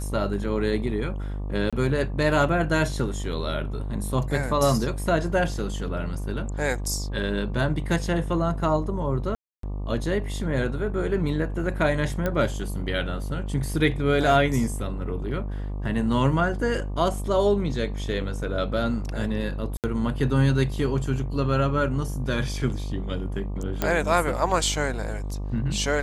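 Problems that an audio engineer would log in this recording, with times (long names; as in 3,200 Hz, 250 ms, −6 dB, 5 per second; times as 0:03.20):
mains buzz 50 Hz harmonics 24 −30 dBFS
0:01.70–0:01.73: drop-out 26 ms
0:09.35–0:09.63: drop-out 283 ms
0:12.26: click −13 dBFS
0:19.77–0:19.84: drop-out 68 ms
0:23.82: click −9 dBFS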